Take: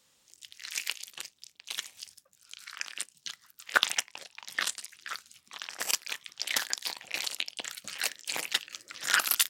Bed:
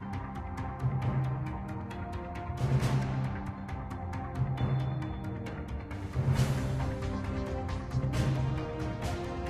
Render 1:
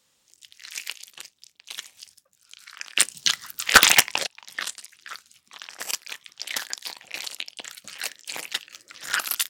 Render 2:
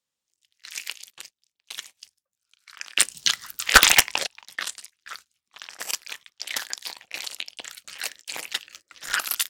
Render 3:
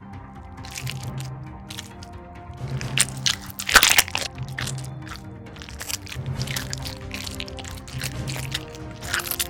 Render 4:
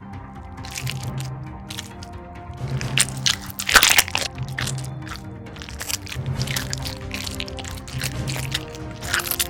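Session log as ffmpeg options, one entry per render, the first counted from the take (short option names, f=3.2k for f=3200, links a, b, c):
-filter_complex "[0:a]asettb=1/sr,asplit=3[a][b][c];[a]atrim=end=2.974[d];[b]atrim=start=2.97:end=4.27,asetpts=PTS-STARTPTS,afade=t=in:d=0.004:c=qsin,afade=t=out:st=1.296:d=0.004:c=qsin,aeval=exprs='0.794*sin(PI/2*5.62*val(0)/0.794)':c=same[e];[c]atrim=start=4.266[f];[d][e]acrossfade=d=0.004:c1=hsin:c2=qsin[g];[g][f]acrossfade=d=0.004:c1=qsin:c2=hsin,asplit=3[h][i][j];[h]afade=t=out:st=8.59:d=0.02[k];[i]volume=27dB,asoftclip=hard,volume=-27dB,afade=t=in:st=8.59:d=0.02,afade=t=out:st=9.11:d=0.02[l];[j]afade=t=in:st=9.11:d=0.02[m];[k][l][m]amix=inputs=3:normalize=0"
-af "agate=range=-19dB:threshold=-44dB:ratio=16:detection=peak,asubboost=boost=3:cutoff=76"
-filter_complex "[1:a]volume=-1.5dB[a];[0:a][a]amix=inputs=2:normalize=0"
-af "volume=3dB,alimiter=limit=-1dB:level=0:latency=1"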